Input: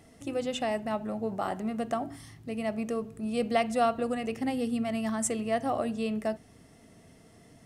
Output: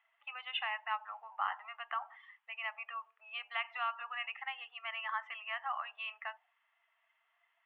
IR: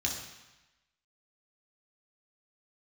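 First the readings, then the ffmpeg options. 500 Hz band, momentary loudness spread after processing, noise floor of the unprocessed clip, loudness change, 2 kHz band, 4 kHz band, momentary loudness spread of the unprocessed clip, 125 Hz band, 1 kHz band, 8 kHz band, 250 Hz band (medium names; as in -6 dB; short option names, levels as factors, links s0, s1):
-25.0 dB, 9 LU, -57 dBFS, -8.5 dB, +1.5 dB, -0.5 dB, 7 LU, under -40 dB, -6.0 dB, under -40 dB, under -40 dB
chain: -af "afftdn=nr=16:nf=-48,acompressor=threshold=0.0316:ratio=6,asuperpass=centerf=1700:order=12:qfactor=0.74,volume=2.11"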